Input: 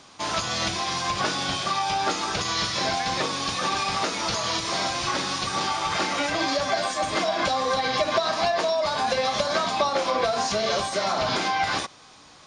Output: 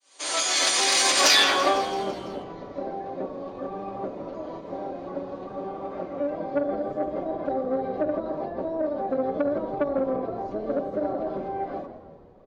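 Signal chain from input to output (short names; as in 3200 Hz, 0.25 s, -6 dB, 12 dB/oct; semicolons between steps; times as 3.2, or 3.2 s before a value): opening faded in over 1.23 s; notch 5400 Hz, Q 11; comb 5.2 ms, depth 89%; de-hum 67.75 Hz, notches 17; low-pass sweep 9100 Hz -> 330 Hz, 1.19–1.88; in parallel at -0.5 dB: compressor 6:1, threshold -34 dBFS, peak gain reduction 15 dB; on the sum: resonant low shelf 370 Hz -14 dB, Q 3; on a send at -13.5 dB: reverb RT60 1.2 s, pre-delay 3 ms; on the sum: harmoniser -12 st -1 dB; soft clip -9.5 dBFS, distortion -18 dB; RIAA curve recording; frequency-shifting echo 0.167 s, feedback 59%, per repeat -75 Hz, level -13 dB; gain -3 dB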